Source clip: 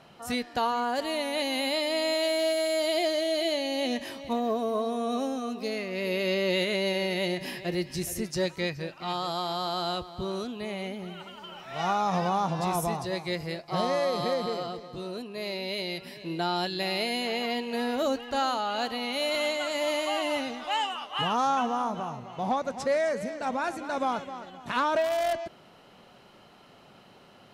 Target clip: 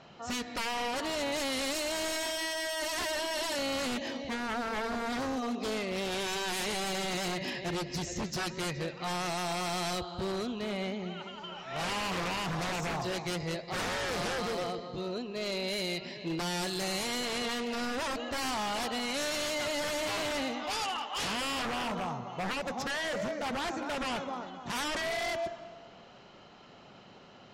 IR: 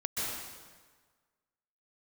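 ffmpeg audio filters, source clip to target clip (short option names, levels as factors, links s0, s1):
-filter_complex "[0:a]aresample=16000,aresample=44100,asplit=2[s0][s1];[1:a]atrim=start_sample=2205,lowshelf=f=86:g=5.5[s2];[s1][s2]afir=irnorm=-1:irlink=0,volume=0.106[s3];[s0][s3]amix=inputs=2:normalize=0,aeval=exprs='0.0398*(abs(mod(val(0)/0.0398+3,4)-2)-1)':c=same" -ar 44100 -c:a libmp3lame -b:a 64k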